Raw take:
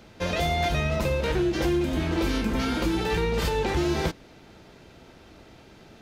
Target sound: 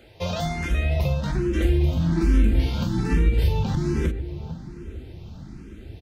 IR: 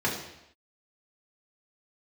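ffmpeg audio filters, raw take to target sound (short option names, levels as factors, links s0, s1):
-filter_complex "[0:a]asubboost=boost=7.5:cutoff=240,acompressor=threshold=0.112:ratio=2.5,asettb=1/sr,asplit=3[s0][s1][s2];[s0]atrim=end=1.554[s3];[s1]atrim=start=1.55:end=3.63,asetpts=PTS-STARTPTS,afade=t=in:d=0.004:c=qsin,afade=t=out:st=2.076:d=0.004:c=qsin,asplit=2[s4][s5];[s5]adelay=42,volume=0.447[s6];[s4][s6]amix=inputs=2:normalize=0,atrim=end_sample=91728[s7];[s2]atrim=start=3.626[s8];[s3][s7]acrossfade=d=0.004:c1=hsin:c2=qsin[s9];[s9][s8]acrossfade=d=0.004:c1=qsin:c2=hsin,asplit=2[s10][s11];[s11]adelay=451,lowpass=f=1400:p=1,volume=0.251,asplit=2[s12][s13];[s13]adelay=451,lowpass=f=1400:p=1,volume=0.51,asplit=2[s14][s15];[s15]adelay=451,lowpass=f=1400:p=1,volume=0.51,asplit=2[s16][s17];[s17]adelay=451,lowpass=f=1400:p=1,volume=0.51,asplit=2[s18][s19];[s19]adelay=451,lowpass=f=1400:p=1,volume=0.51[s20];[s10][s12][s14][s16][s18][s20]amix=inputs=6:normalize=0,asplit=2[s21][s22];[s22]afreqshift=1.2[s23];[s21][s23]amix=inputs=2:normalize=1,volume=1.26"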